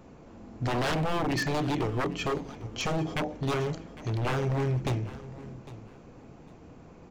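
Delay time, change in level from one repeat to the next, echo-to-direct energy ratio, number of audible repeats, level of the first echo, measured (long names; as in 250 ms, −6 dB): 804 ms, −12.5 dB, −17.5 dB, 2, −17.5 dB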